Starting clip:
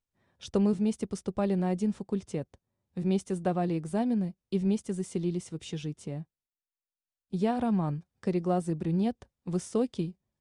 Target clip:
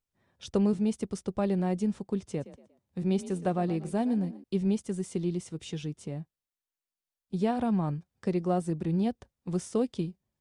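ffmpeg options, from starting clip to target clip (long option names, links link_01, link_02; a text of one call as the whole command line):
ffmpeg -i in.wav -filter_complex "[0:a]asettb=1/sr,asplit=3[link_01][link_02][link_03];[link_01]atrim=end=2.224[link_04];[link_02]atrim=start=2.22:end=4.44,asetpts=PTS-STARTPTS,afade=type=in:duration=0.004:curve=qsin,afade=type=out:start_time=2.216:duration=0.004:curve=qsin,asplit=4[link_05][link_06][link_07][link_08];[link_06]adelay=118,afreqshift=35,volume=-16dB[link_09];[link_07]adelay=236,afreqshift=70,volume=-24.9dB[link_10];[link_08]adelay=354,afreqshift=105,volume=-33.7dB[link_11];[link_05][link_09][link_10][link_11]amix=inputs=4:normalize=0,atrim=end_sample=97902[link_12];[link_03]atrim=start=4.436[link_13];[link_04][link_12]acrossfade=duration=0.004:curve1=hsin:curve2=qsin[link_14];[link_14][link_13]acrossfade=duration=0.004:curve1=qsin:curve2=hsin" out.wav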